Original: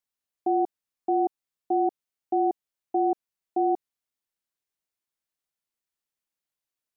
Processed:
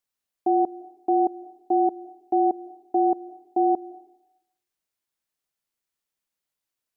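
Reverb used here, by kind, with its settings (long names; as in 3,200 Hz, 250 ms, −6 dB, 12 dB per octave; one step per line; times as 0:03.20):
comb and all-pass reverb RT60 0.87 s, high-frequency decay 0.9×, pre-delay 115 ms, DRR 18.5 dB
level +3 dB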